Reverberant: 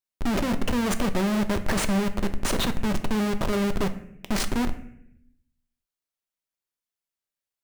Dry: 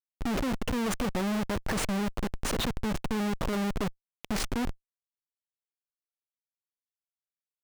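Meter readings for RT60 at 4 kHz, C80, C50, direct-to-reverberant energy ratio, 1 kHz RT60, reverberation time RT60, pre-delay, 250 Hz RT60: 0.55 s, 15.0 dB, 13.0 dB, 8.0 dB, 0.65 s, 0.75 s, 3 ms, 1.0 s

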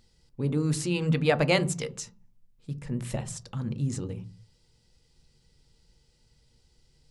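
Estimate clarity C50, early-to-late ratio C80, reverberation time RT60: 19.0 dB, 24.0 dB, 0.40 s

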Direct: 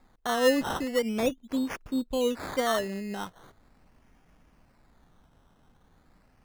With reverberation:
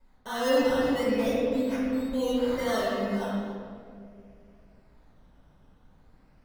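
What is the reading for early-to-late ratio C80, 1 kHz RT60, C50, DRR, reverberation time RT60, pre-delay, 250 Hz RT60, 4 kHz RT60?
-0.5 dB, 1.7 s, -3.0 dB, -10.5 dB, 2.2 s, 4 ms, 2.8 s, 1.3 s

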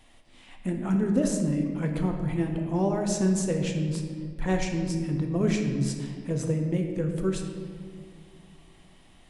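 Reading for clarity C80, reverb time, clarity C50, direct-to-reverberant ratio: 6.5 dB, 2.0 s, 5.0 dB, 2.5 dB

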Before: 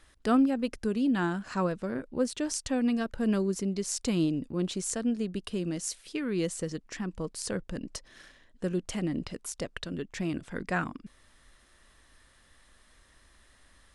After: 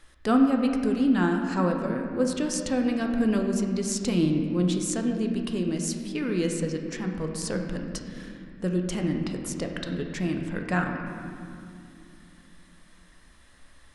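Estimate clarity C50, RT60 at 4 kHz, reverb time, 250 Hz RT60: 4.5 dB, 1.5 s, 2.5 s, 4.2 s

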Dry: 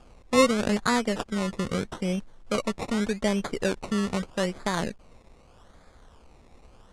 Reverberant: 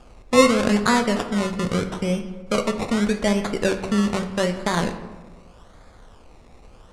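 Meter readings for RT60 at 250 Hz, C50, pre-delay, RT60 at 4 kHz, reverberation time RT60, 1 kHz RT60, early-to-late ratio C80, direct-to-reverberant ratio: 1.5 s, 9.5 dB, 14 ms, 0.70 s, 1.3 s, 1.2 s, 11.5 dB, 6.5 dB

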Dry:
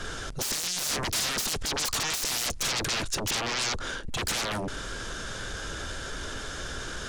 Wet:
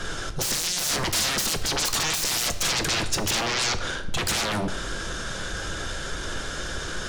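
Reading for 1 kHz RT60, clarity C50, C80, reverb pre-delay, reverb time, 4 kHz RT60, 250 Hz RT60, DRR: 0.90 s, 12.0 dB, 14.0 dB, 5 ms, 1.0 s, 0.70 s, 1.3 s, 8.0 dB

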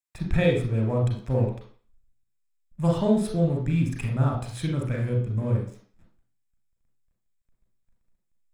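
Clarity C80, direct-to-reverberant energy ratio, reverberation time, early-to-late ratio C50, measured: 9.5 dB, 0.5 dB, 0.45 s, 5.0 dB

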